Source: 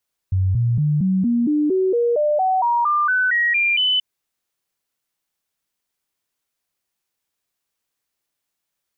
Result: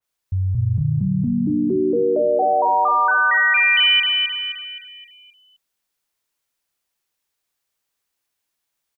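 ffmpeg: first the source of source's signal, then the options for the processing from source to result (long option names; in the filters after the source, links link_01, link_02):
-f lavfi -i "aevalsrc='0.178*clip(min(mod(t,0.23),0.23-mod(t,0.23))/0.005,0,1)*sin(2*PI*94.1*pow(2,floor(t/0.23)/3)*mod(t,0.23))':duration=3.68:sample_rate=44100"
-af "equalizer=frequency=190:width_type=o:width=2.2:gain=-3.5,aecho=1:1:261|522|783|1044|1305|1566:0.668|0.307|0.141|0.0651|0.0299|0.0138,adynamicequalizer=threshold=0.0355:dfrequency=2600:dqfactor=0.7:tfrequency=2600:tqfactor=0.7:attack=5:release=100:ratio=0.375:range=1.5:mode=boostabove:tftype=highshelf"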